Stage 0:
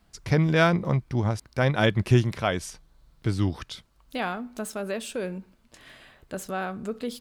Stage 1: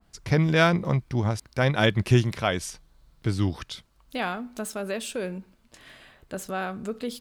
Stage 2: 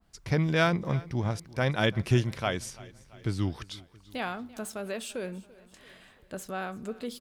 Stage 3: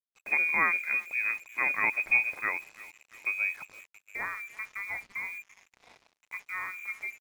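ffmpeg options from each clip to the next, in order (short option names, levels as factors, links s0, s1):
-af "adynamicequalizer=threshold=0.0158:dfrequency=1900:dqfactor=0.7:tfrequency=1900:tqfactor=0.7:attack=5:release=100:ratio=0.375:range=1.5:mode=boostabove:tftype=highshelf"
-af "aecho=1:1:338|676|1014|1352:0.0891|0.0499|0.0279|0.0157,volume=0.596"
-af "lowpass=f=2200:t=q:w=0.5098,lowpass=f=2200:t=q:w=0.6013,lowpass=f=2200:t=q:w=0.9,lowpass=f=2200:t=q:w=2.563,afreqshift=-2600,acrusher=bits=7:mix=0:aa=0.5,volume=0.841"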